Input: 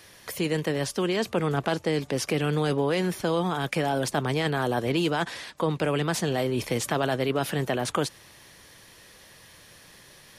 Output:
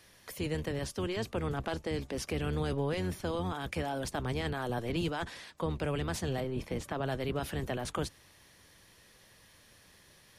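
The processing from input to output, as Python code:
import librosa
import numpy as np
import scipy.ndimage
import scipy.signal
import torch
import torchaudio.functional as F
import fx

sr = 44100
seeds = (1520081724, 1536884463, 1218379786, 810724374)

y = fx.octave_divider(x, sr, octaves=1, level_db=-1.0)
y = fx.high_shelf(y, sr, hz=3100.0, db=-9.5, at=(6.4, 7.07))
y = y * librosa.db_to_amplitude(-9.0)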